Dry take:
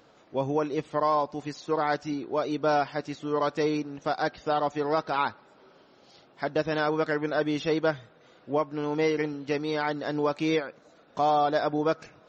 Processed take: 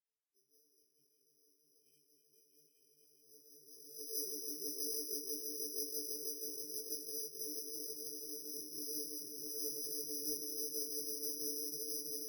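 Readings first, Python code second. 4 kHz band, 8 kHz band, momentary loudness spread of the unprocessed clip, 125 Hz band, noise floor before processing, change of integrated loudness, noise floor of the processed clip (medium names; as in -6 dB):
-5.5 dB, no reading, 6 LU, -32.5 dB, -58 dBFS, -12.0 dB, -77 dBFS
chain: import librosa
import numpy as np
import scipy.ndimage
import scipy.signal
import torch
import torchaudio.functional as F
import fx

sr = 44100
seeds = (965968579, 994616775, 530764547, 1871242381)

p1 = fx.dereverb_blind(x, sr, rt60_s=0.77)
p2 = fx.low_shelf(p1, sr, hz=170.0, db=-6.5)
p3 = fx.level_steps(p2, sr, step_db=10)
p4 = fx.resonator_bank(p3, sr, root=50, chord='sus4', decay_s=0.47)
p5 = fx.cheby_harmonics(p4, sr, harmonics=(3, 7), levels_db=(-7, -31), full_scale_db=-29.5)
p6 = p5 + fx.echo_swell(p5, sr, ms=163, loudest=8, wet_db=-5.5, dry=0)
p7 = fx.filter_sweep_bandpass(p6, sr, from_hz=3100.0, to_hz=370.0, start_s=3.08, end_s=4.28, q=4.3)
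p8 = fx.rotary(p7, sr, hz=5.0)
p9 = fx.brickwall_bandstop(p8, sr, low_hz=460.0, high_hz=3000.0)
p10 = (np.kron(scipy.signal.resample_poly(p9, 1, 8), np.eye(8)[0]) * 8)[:len(p9)]
p11 = fx.detune_double(p10, sr, cents=35)
y = F.gain(torch.from_numpy(p11), 14.5).numpy()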